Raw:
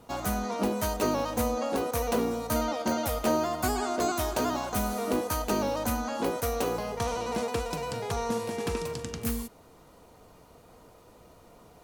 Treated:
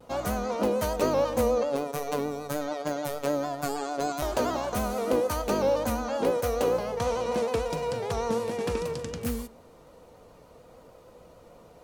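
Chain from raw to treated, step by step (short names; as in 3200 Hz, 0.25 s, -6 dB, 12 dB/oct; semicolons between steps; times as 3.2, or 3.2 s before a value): 1.63–4.22 robotiser 144 Hz; bell 530 Hz +8.5 dB 0.29 oct; reverb RT60 0.95 s, pre-delay 3 ms, DRR 16.5 dB; vibrato 0.47 Hz 19 cents; high shelf 8100 Hz -5.5 dB; vibrato 6.7 Hz 54 cents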